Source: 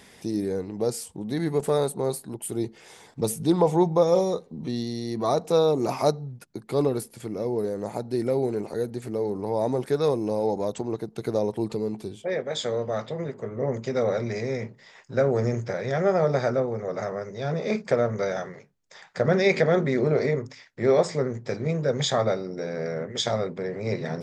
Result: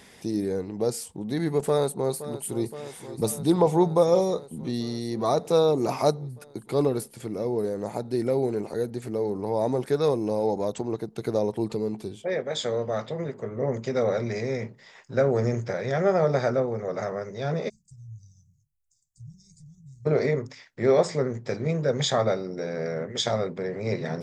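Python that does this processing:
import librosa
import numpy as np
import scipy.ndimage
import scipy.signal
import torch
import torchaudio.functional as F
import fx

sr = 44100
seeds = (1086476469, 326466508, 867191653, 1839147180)

y = fx.echo_throw(x, sr, start_s=1.66, length_s=0.98, ms=520, feedback_pct=80, wet_db=-13.5)
y = fx.cheby2_bandstop(y, sr, low_hz=290.0, high_hz=3000.0, order=4, stop_db=60, at=(17.68, 20.05), fade=0.02)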